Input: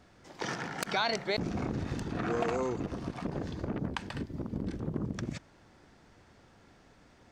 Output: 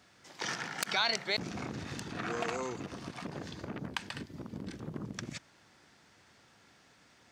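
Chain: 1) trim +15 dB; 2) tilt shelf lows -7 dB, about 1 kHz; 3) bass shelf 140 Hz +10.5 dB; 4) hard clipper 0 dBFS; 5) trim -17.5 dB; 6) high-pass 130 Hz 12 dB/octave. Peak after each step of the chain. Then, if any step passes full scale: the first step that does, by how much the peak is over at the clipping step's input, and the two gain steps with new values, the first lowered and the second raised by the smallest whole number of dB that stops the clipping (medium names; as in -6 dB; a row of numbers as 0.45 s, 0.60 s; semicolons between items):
-2.0 dBFS, +3.5 dBFS, +3.5 dBFS, 0.0 dBFS, -17.5 dBFS, -16.5 dBFS; step 2, 3.5 dB; step 1 +11 dB, step 5 -13.5 dB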